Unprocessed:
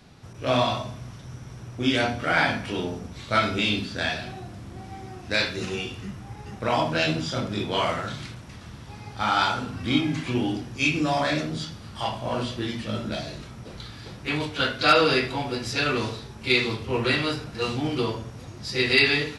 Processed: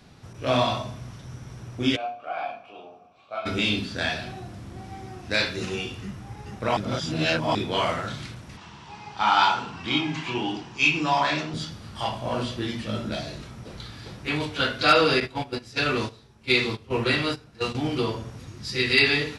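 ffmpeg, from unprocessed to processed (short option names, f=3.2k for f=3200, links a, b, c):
-filter_complex "[0:a]asplit=3[a][b][c];[a]afade=t=out:st=1.95:d=0.02[d];[b]asplit=3[e][f][g];[e]bandpass=f=730:t=q:w=8,volume=0dB[h];[f]bandpass=f=1.09k:t=q:w=8,volume=-6dB[i];[g]bandpass=f=2.44k:t=q:w=8,volume=-9dB[j];[h][i][j]amix=inputs=3:normalize=0,afade=t=in:st=1.95:d=0.02,afade=t=out:st=3.45:d=0.02[k];[c]afade=t=in:st=3.45:d=0.02[l];[d][k][l]amix=inputs=3:normalize=0,asettb=1/sr,asplit=3[m][n][o];[m]atrim=end=8.574[p];[n]atrim=start=8.57:end=11.54,asetpts=PTS-STARTPTS,afade=t=in:d=0.004:c=qsin,afade=t=out:st=2.966:d=0.004:c=qsin,highpass=110,equalizer=f=110:t=q:w=4:g=-10,equalizer=f=250:t=q:w=4:g=-9,equalizer=f=540:t=q:w=4:g=-7,equalizer=f=940:t=q:w=4:g=10,equalizer=f=2.8k:t=q:w=4:g=6,lowpass=f=7.5k:w=0.5412,lowpass=f=7.5k:w=1.3066[q];[o]atrim=start=11.536[r];[p][q]acrossfade=d=0.004:c1=hsin:c2=qsin[s];[s][r]acrossfade=d=0.004:c1=qsin:c2=hsin,asettb=1/sr,asplit=3[t][u][v];[t]atrim=end=15.204[w];[u]atrim=start=15.2:end=17.75,asetpts=PTS-STARTPTS,afade=t=in:d=0.004:c=qsin,afade=t=out:st=2.546:d=0.004:c=qsin,agate=range=-14dB:threshold=-29dB:ratio=16:release=100:detection=peak[x];[v]atrim=start=17.746[y];[w][x]acrossfade=d=0.004:c1=hsin:c2=qsin[z];[z][y]acrossfade=d=0.004:c1=qsin:c2=hsin,asettb=1/sr,asplit=3[aa][ab][ac];[aa]atrim=end=18.384[ad];[ab]atrim=start=18.38:end=18.98,asetpts=PTS-STARTPTS,afade=t=in:d=0.004:c=qsin,afade=t=out:st=0.596:d=0.004:c=qsin,equalizer=f=670:t=o:w=1:g=-8[ae];[ac]atrim=start=18.976[af];[ad][ae]acrossfade=d=0.004:c1=hsin:c2=qsin[ag];[ag][af]acrossfade=d=0.004:c1=qsin:c2=hsin,asplit=3[ah][ai][aj];[ah]atrim=end=6.772[ak];[ai]atrim=start=6.768:end=7.552,asetpts=PTS-STARTPTS,areverse[al];[aj]atrim=start=7.548[am];[ak][al]acrossfade=d=0.004:c1=hsin:c2=hsin[an];[an][am]acrossfade=d=0.004:c1=hsin:c2=hsin"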